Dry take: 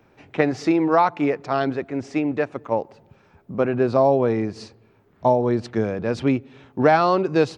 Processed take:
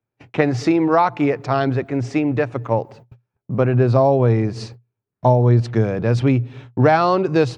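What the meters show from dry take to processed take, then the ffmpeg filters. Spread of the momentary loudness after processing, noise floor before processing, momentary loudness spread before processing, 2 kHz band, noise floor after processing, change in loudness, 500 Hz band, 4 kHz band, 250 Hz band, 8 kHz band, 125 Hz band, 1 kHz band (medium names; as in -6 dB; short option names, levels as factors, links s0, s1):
9 LU, -58 dBFS, 10 LU, +2.0 dB, -83 dBFS, +3.0 dB, +2.0 dB, +2.5 dB, +3.0 dB, no reading, +12.0 dB, +1.5 dB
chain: -filter_complex "[0:a]agate=range=0.02:threshold=0.00501:ratio=16:detection=peak,equalizer=f=120:w=5.1:g=15,asplit=2[s0][s1];[s1]acompressor=threshold=0.0708:ratio=6,volume=1.06[s2];[s0][s2]amix=inputs=2:normalize=0,volume=0.891"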